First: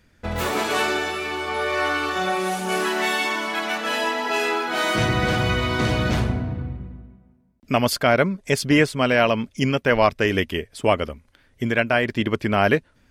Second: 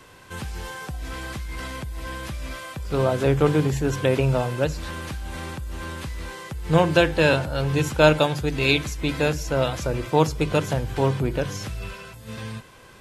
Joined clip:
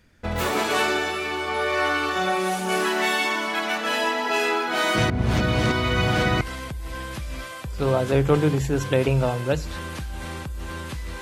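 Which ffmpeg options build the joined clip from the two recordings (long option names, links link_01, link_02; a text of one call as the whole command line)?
ffmpeg -i cue0.wav -i cue1.wav -filter_complex "[0:a]apad=whole_dur=11.21,atrim=end=11.21,asplit=2[link_01][link_02];[link_01]atrim=end=5.102[link_03];[link_02]atrim=start=5.098:end=6.412,asetpts=PTS-STARTPTS,areverse[link_04];[1:a]atrim=start=1.528:end=6.33[link_05];[link_03][link_04]acrossfade=duration=0.004:curve1=hsin:curve2=hsin[link_06];[link_06][link_05]acrossfade=duration=0.004:curve1=hsin:curve2=hsin" out.wav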